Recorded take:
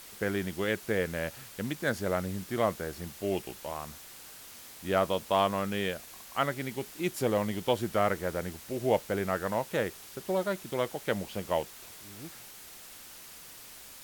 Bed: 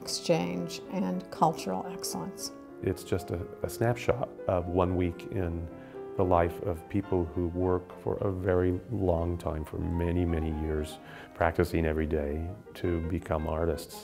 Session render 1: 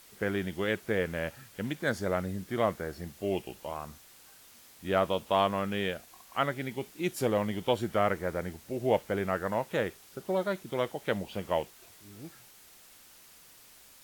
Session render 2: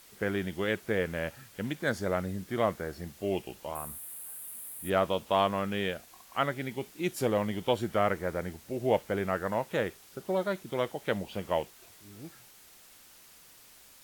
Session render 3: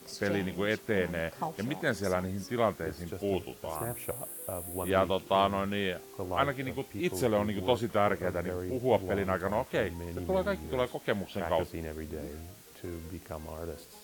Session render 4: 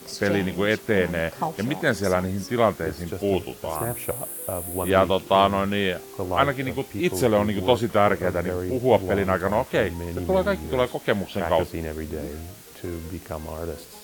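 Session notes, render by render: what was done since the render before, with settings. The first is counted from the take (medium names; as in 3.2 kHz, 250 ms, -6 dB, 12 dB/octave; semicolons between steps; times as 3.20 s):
noise print and reduce 7 dB
3.75–4.90 s: resonant high shelf 7.8 kHz +11.5 dB, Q 3
add bed -10.5 dB
trim +8 dB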